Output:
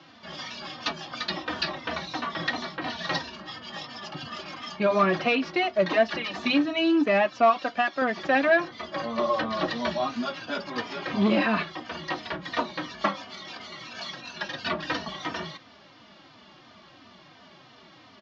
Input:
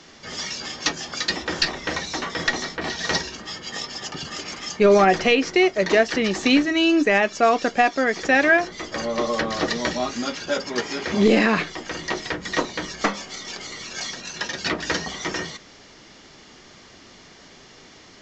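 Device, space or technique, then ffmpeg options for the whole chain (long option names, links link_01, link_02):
barber-pole flanger into a guitar amplifier: -filter_complex "[0:a]asplit=2[link_01][link_02];[link_02]adelay=3.2,afreqshift=-2.9[link_03];[link_01][link_03]amix=inputs=2:normalize=1,asoftclip=type=tanh:threshold=-12dB,highpass=100,equalizer=frequency=440:width_type=q:width=4:gain=-10,equalizer=frequency=620:width_type=q:width=4:gain=4,equalizer=frequency=1100:width_type=q:width=4:gain=4,equalizer=frequency=2000:width_type=q:width=4:gain=-5,lowpass=frequency=4200:width=0.5412,lowpass=frequency=4200:width=1.3066,asettb=1/sr,asplit=3[link_04][link_05][link_06];[link_04]atrim=end=7.504[link_07];[link_05]atrim=start=7.5:end=8.02,asetpts=PTS-STARTPTS,afade=type=in:duration=0.004:curve=qsin,afade=type=out:start_time=0.516:duration=0.004:curve=qsin,lowshelf=frequency=440:gain=-7.5[link_08];[link_06]atrim=start=8.016[link_09];[link_07][link_08]acrossfade=duration=0.004:curve1=hsin:curve2=qsin[link_10];[link_10][link_09]acrossfade=duration=0.004:curve1=qsin:curve2=hsin"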